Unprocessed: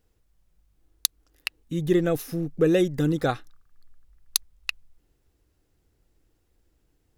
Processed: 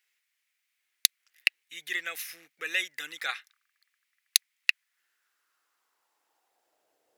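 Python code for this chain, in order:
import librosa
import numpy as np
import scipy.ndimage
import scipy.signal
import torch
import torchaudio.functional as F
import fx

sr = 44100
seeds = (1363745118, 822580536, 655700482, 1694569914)

y = fx.filter_sweep_highpass(x, sr, from_hz=2100.0, to_hz=560.0, start_s=4.57, end_s=7.17, q=3.4)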